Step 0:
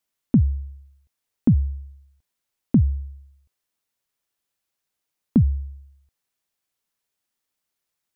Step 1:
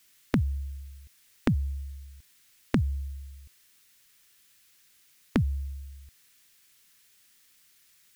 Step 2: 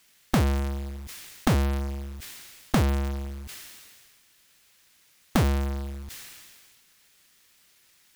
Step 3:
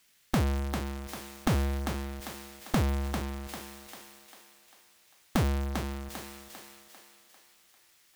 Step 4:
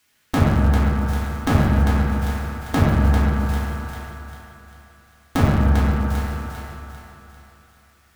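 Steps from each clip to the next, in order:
FFT filter 150 Hz 0 dB, 410 Hz -4 dB, 710 Hz -11 dB, 1.8 kHz +5 dB; spectrum-flattening compressor 2:1
square wave that keeps the level; decay stretcher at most 29 dB/s; trim -2 dB
thinning echo 397 ms, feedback 50%, high-pass 300 Hz, level -4.5 dB; trim -4.5 dB
in parallel at -7.5 dB: bit crusher 7-bit; on the sum: reverberation RT60 3.0 s, pre-delay 5 ms, DRR -7 dB

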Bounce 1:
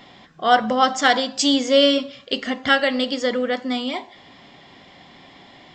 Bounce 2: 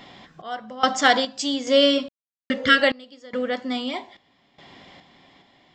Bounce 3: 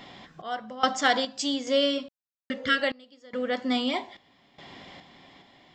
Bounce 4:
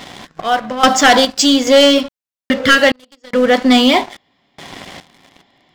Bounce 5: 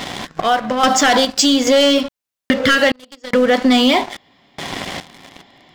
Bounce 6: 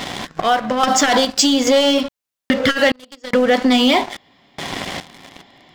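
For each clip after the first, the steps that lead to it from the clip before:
spectral replace 2.41–2.78 s, 440–1100 Hz before; random-step tremolo 2.4 Hz, depth 100%; trim +1.5 dB
gain riding within 5 dB 0.5 s; trim -4 dB
waveshaping leveller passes 3; trim +6.5 dB
peak limiter -6 dBFS, peak gain reduction 4.5 dB; compression 2:1, threshold -24 dBFS, peak gain reduction 8.5 dB; trim +7 dB
transformer saturation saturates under 290 Hz

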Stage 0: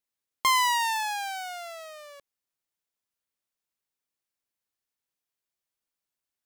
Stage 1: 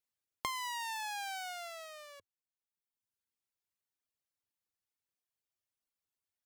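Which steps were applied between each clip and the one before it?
peaking EQ 93 Hz +8.5 dB 0.64 oct; compression 16:1, threshold -32 dBFS, peak gain reduction 13 dB; reverb removal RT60 1.3 s; trim -3 dB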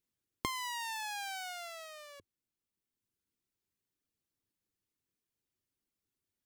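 resonant low shelf 470 Hz +9 dB, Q 1.5; trim +1 dB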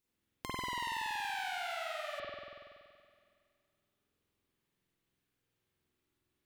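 compression, threshold -43 dBFS, peak gain reduction 12 dB; feedback comb 110 Hz, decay 1.9 s, mix 30%; reverberation RT60 2.1 s, pre-delay 47 ms, DRR -8 dB; trim +4 dB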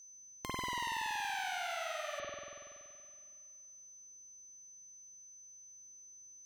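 whistle 6.1 kHz -53 dBFS

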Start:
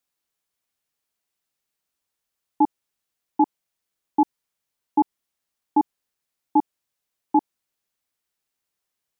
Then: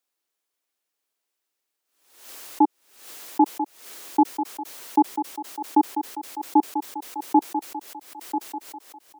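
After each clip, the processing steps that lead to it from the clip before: resonant low shelf 230 Hz -10 dB, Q 1.5; thinning echo 991 ms, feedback 54%, high-pass 280 Hz, level -8 dB; swell ahead of each attack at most 87 dB/s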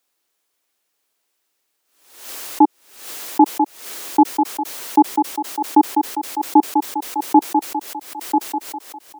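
loudness maximiser +10.5 dB; trim -1 dB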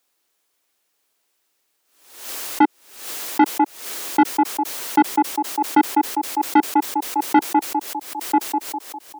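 saturation -9.5 dBFS, distortion -11 dB; trim +2 dB

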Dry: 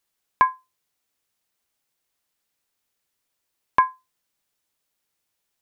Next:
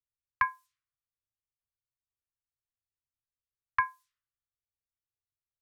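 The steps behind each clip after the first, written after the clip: Chebyshev band-stop 130–1100 Hz, order 5; level-controlled noise filter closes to 420 Hz, open at -30 dBFS; treble shelf 3.2 kHz +12 dB; trim -5 dB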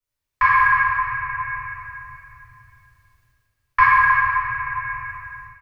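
reverberation RT60 2.7 s, pre-delay 3 ms, DRR -15 dB; level rider gain up to 13 dB; delay 304 ms -13.5 dB; trim -1 dB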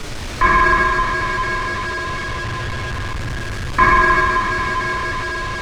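jump at every zero crossing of -19 dBFS; in parallel at -7.5 dB: sample-rate reducer 1 kHz, jitter 0%; on the sum: distance through air 93 m

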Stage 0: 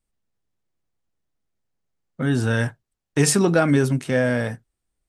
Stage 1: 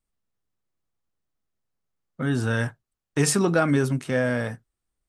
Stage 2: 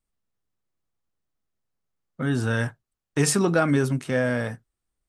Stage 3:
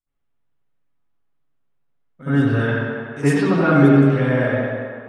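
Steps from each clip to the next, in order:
peaking EQ 1.2 kHz +4 dB 0.52 oct; trim -3.5 dB
no audible change
tape echo 91 ms, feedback 80%, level -4.5 dB, low-pass 4.1 kHz; reverberation RT60 1.0 s, pre-delay 64 ms, DRR -16.5 dB; trim -12.5 dB

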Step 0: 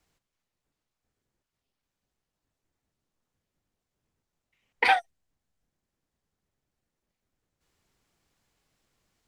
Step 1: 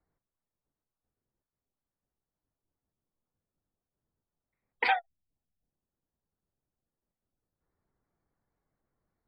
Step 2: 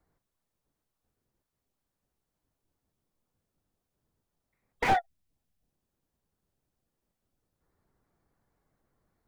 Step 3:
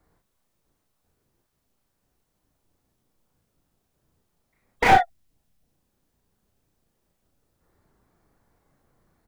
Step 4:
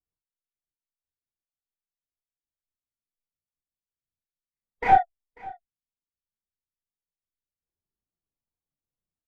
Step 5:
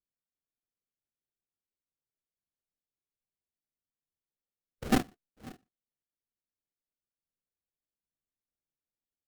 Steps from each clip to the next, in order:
local Wiener filter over 15 samples; spectral gate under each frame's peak -30 dB strong; trim -5 dB
slew-rate limiter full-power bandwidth 39 Hz; trim +6.5 dB
doubling 35 ms -3 dB; trim +7.5 dB
delay 542 ms -14.5 dB; spectral contrast expander 1.5:1; trim -3 dB
random holes in the spectrogram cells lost 28%; speakerphone echo 120 ms, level -29 dB; sample-rate reducer 1 kHz, jitter 20%; trim -8.5 dB

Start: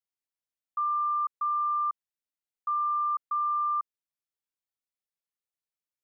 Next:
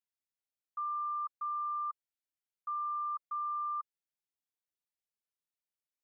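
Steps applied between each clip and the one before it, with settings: band-stop 1.1 kHz, Q 7.2; trim -5.5 dB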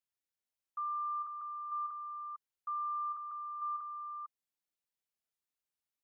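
delay 450 ms -6.5 dB; trim -1 dB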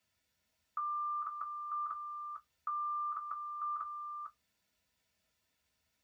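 reverberation RT60 0.10 s, pre-delay 3 ms, DRR 1 dB; trim +6.5 dB

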